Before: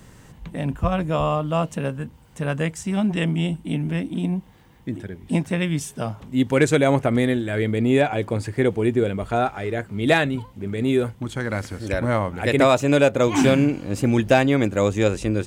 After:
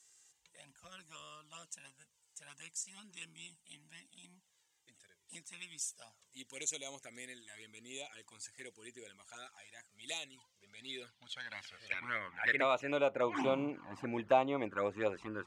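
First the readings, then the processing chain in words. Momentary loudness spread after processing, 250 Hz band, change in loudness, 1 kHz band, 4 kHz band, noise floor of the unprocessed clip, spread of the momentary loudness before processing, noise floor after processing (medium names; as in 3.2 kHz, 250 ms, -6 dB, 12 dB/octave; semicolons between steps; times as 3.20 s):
22 LU, -24.0 dB, -16.0 dB, -14.5 dB, -14.0 dB, -49 dBFS, 12 LU, -77 dBFS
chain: touch-sensitive flanger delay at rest 2.7 ms, full sweep at -13.5 dBFS; band-pass sweep 7 kHz -> 1.1 kHz, 10.29–13.28 s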